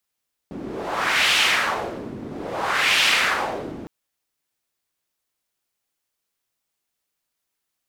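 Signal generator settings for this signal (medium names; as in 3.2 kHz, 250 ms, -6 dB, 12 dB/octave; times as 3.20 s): wind-like swept noise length 3.36 s, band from 250 Hz, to 2.8 kHz, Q 1.8, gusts 2, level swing 16 dB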